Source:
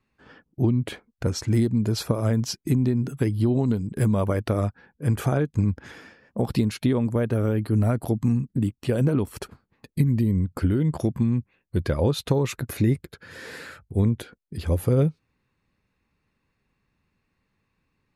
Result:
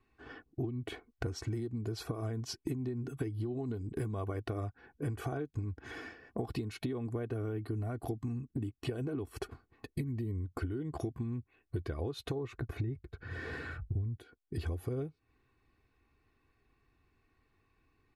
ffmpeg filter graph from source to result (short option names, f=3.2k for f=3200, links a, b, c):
-filter_complex "[0:a]asettb=1/sr,asplit=3[a][b][c];[a]atrim=end=12.354[d];[b]atrim=start=12.35:end=14.17,asetpts=PTS-STARTPTS,afade=t=in:d=0.004:c=qsin,afade=t=out:st=1.816:d=0.004:c=qsin,lowpass=f=1.6k:p=1,asubboost=boost=10:cutoff=170[e];[c]atrim=start=14.166[f];[d][e]acrossfade=d=0.004:c1=hsin:c2=qsin[g];[g][f]acrossfade=d=0.004:c1=qsin:c2=hsin,highshelf=f=3.6k:g=-7.5,aecho=1:1:2.7:0.7,acompressor=threshold=-33dB:ratio=16"